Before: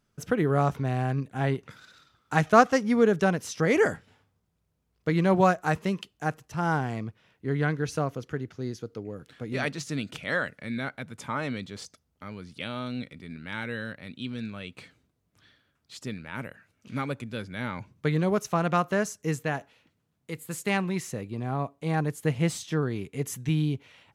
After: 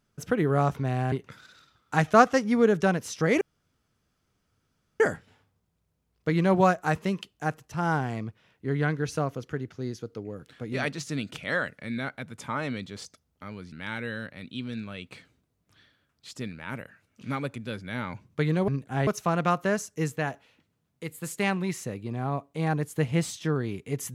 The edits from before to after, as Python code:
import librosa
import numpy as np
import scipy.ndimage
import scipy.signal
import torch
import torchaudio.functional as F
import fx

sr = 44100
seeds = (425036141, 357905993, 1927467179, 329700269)

y = fx.edit(x, sr, fx.move(start_s=1.12, length_s=0.39, to_s=18.34),
    fx.insert_room_tone(at_s=3.8, length_s=1.59),
    fx.cut(start_s=12.52, length_s=0.86), tone=tone)